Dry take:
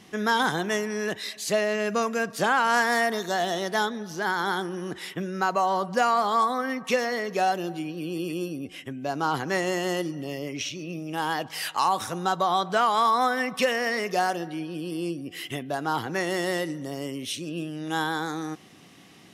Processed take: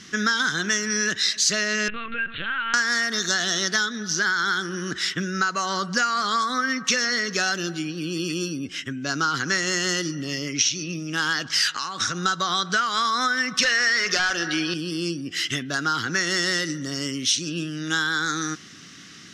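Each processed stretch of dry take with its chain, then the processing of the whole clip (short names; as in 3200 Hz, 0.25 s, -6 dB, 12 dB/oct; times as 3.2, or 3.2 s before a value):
1.88–2.74 bell 2600 Hz +12.5 dB 0.69 oct + compressor 12:1, threshold -31 dBFS + LPC vocoder at 8 kHz pitch kept
11.72–12.23 compressor 8:1, threshold -28 dBFS + air absorption 56 m
13.63–14.74 overdrive pedal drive 18 dB, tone 3800 Hz, clips at -10.5 dBFS + overloaded stage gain 14.5 dB
whole clip: EQ curve 270 Hz 0 dB, 860 Hz -14 dB, 1400 Hz +10 dB, 2400 Hz +1 dB, 6100 Hz +11 dB, 11000 Hz -9 dB; compressor 6:1, threshold -25 dBFS; dynamic EQ 5200 Hz, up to +4 dB, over -41 dBFS, Q 0.82; gain +4.5 dB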